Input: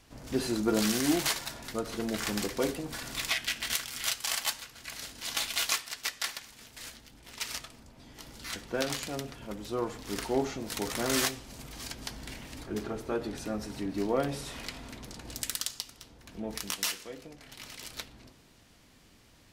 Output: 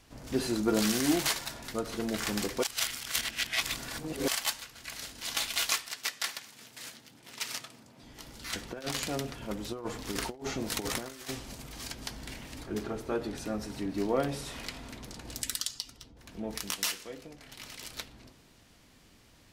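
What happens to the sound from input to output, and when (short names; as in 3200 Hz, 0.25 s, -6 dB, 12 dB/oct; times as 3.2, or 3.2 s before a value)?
2.63–4.28 reverse
5.89–8.03 HPF 110 Hz 24 dB/oct
8.53–11.55 negative-ratio compressor -35 dBFS, ratio -0.5
15.42–16.17 spectral contrast raised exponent 1.5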